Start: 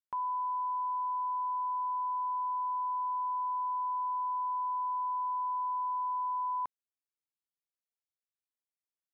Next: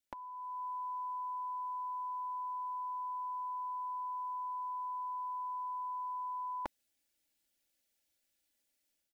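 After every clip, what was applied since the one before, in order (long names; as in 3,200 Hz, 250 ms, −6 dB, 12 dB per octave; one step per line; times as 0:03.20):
parametric band 1,100 Hz −14.5 dB 0.52 octaves
comb filter 3.5 ms, depth 65%
automatic gain control gain up to 8 dB
level +5.5 dB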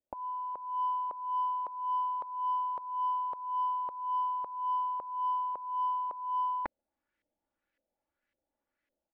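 auto-filter low-pass saw up 1.8 Hz 530–2,000 Hz
in parallel at −9 dB: soft clipping −31 dBFS, distortion −19 dB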